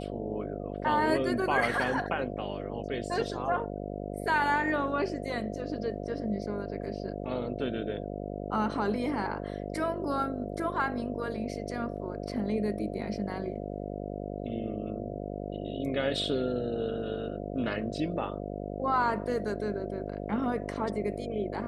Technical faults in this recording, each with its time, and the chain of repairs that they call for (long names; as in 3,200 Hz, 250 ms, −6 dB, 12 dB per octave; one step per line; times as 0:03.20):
mains buzz 50 Hz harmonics 14 −37 dBFS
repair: hum removal 50 Hz, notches 14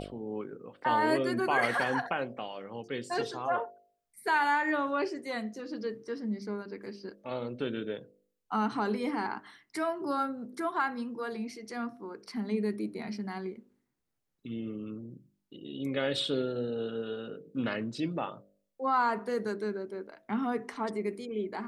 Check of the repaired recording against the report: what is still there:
none of them is left